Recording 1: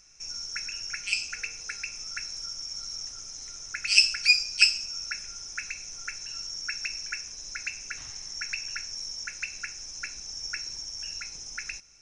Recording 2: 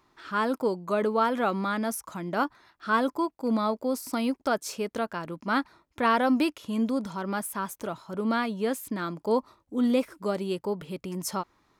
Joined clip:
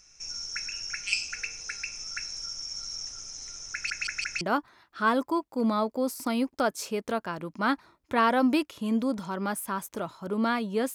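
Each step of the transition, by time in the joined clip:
recording 1
0:03.73: stutter in place 0.17 s, 4 plays
0:04.41: continue with recording 2 from 0:02.28

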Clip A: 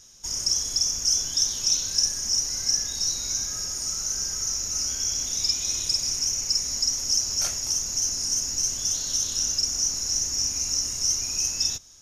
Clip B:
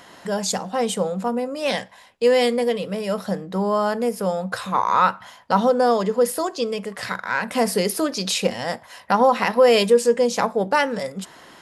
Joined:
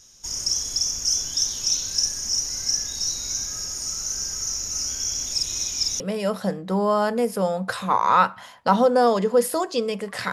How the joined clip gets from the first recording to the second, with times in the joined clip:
clip A
0:05.32–0:06.00: reverse
0:06.00: continue with clip B from 0:02.84

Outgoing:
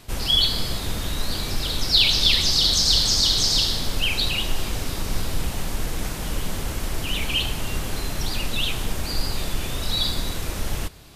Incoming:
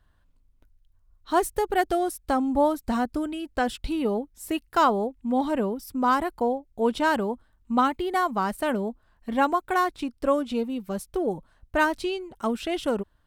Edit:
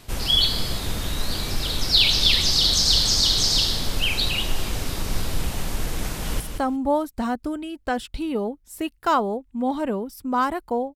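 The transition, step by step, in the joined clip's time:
outgoing
0:06.07–0:06.40: delay throw 180 ms, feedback 15%, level −6.5 dB
0:06.40: continue with incoming from 0:02.10

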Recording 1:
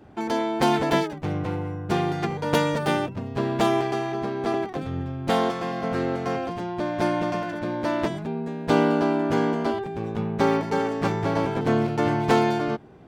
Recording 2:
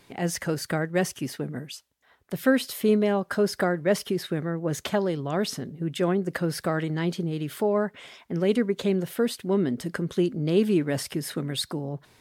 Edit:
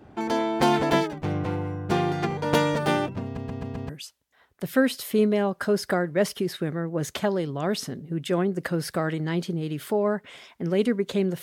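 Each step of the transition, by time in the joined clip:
recording 1
0:03.24: stutter in place 0.13 s, 5 plays
0:03.89: continue with recording 2 from 0:01.59

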